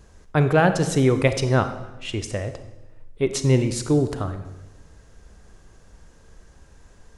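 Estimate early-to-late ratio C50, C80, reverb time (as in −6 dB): 10.5 dB, 12.5 dB, 1.0 s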